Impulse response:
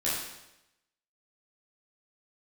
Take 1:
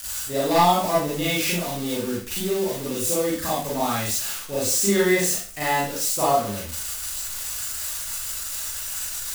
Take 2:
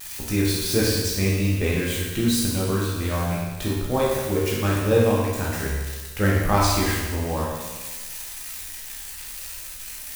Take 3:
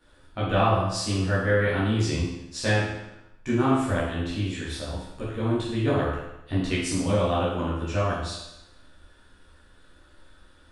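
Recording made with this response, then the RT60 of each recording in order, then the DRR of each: 3; 0.40, 1.3, 0.90 seconds; −8.0, −5.5, −9.5 decibels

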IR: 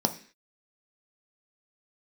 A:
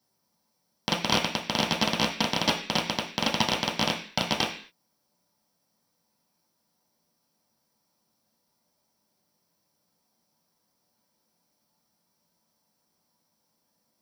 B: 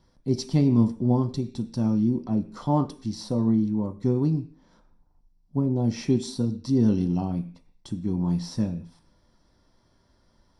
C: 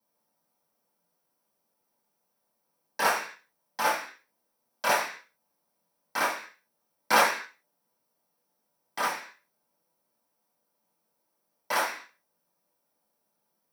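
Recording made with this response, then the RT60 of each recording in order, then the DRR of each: B; 0.45, 0.45, 0.45 seconds; −2.0, 6.0, −9.0 decibels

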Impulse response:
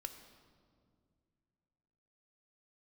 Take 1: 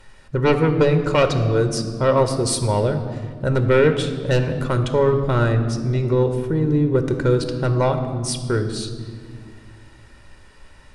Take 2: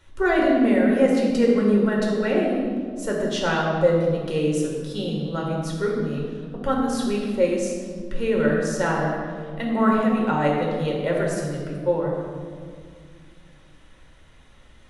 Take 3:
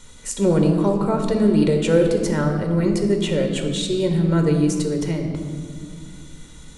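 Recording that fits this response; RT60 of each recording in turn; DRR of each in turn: 1; 2.2, 2.0, 2.1 seconds; 7.0, −3.0, 3.0 decibels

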